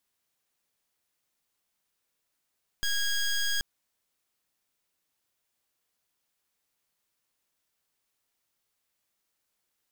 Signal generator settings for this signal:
pulse wave 1,640 Hz, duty 15% −27.5 dBFS 0.78 s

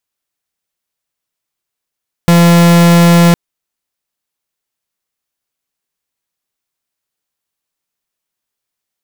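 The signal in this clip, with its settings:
pulse wave 171 Hz, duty 44% −6 dBFS 1.06 s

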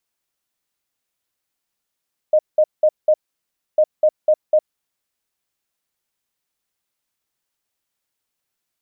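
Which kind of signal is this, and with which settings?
beeps in groups sine 616 Hz, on 0.06 s, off 0.19 s, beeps 4, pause 0.64 s, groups 2, −9.5 dBFS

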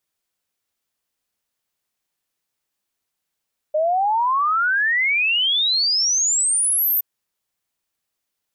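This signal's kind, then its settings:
exponential sine sweep 600 Hz → 14,000 Hz 3.27 s −16 dBFS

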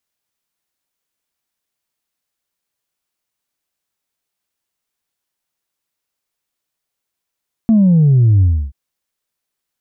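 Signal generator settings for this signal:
bass drop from 230 Hz, over 1.03 s, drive 0.5 dB, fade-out 0.30 s, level −7.5 dB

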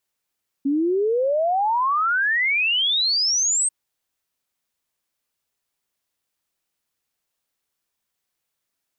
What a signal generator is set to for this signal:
exponential sine sweep 270 Hz → 8,500 Hz 3.04 s −17.5 dBFS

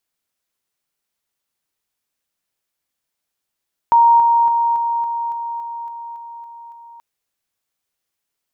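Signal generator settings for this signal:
level staircase 934 Hz −7.5 dBFS, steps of −3 dB, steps 11, 0.28 s 0.00 s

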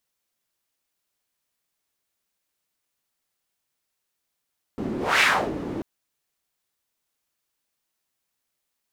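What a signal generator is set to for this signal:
pass-by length 1.04 s, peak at 0:00.43, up 0.25 s, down 0.35 s, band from 280 Hz, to 2,200 Hz, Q 2.1, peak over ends 11.5 dB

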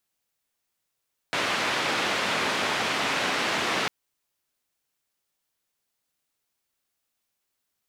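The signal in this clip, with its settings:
band-limited noise 180–2,700 Hz, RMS −26.5 dBFS 2.55 s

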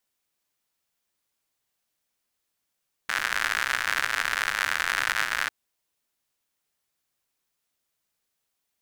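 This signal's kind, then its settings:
rain-like ticks over hiss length 2.40 s, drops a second 110, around 1,600 Hz, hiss −22 dB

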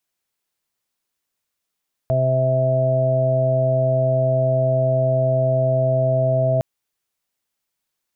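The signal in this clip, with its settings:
steady harmonic partials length 4.51 s, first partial 130 Hz, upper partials −14.5/−15/−11/1.5 dB, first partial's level −19 dB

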